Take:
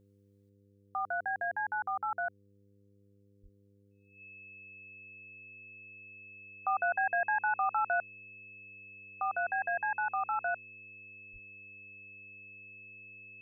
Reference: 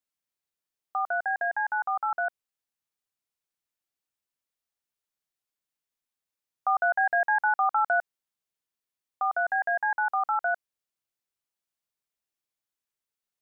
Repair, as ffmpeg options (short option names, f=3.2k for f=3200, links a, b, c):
-filter_complex "[0:a]bandreject=f=100.2:t=h:w=4,bandreject=f=200.4:t=h:w=4,bandreject=f=300.6:t=h:w=4,bandreject=f=400.8:t=h:w=4,bandreject=f=501:t=h:w=4,bandreject=f=2.6k:w=30,asplit=3[a][b][c];[a]afade=t=out:st=3.42:d=0.02[d];[b]highpass=f=140:w=0.5412,highpass=f=140:w=1.3066,afade=t=in:st=3.42:d=0.02,afade=t=out:st=3.54:d=0.02[e];[c]afade=t=in:st=3.54:d=0.02[f];[d][e][f]amix=inputs=3:normalize=0,asplit=3[g][h][i];[g]afade=t=out:st=11.32:d=0.02[j];[h]highpass=f=140:w=0.5412,highpass=f=140:w=1.3066,afade=t=in:st=11.32:d=0.02,afade=t=out:st=11.44:d=0.02[k];[i]afade=t=in:st=11.44:d=0.02[l];[j][k][l]amix=inputs=3:normalize=0,asetnsamples=n=441:p=0,asendcmd='0.49 volume volume 6dB',volume=0dB"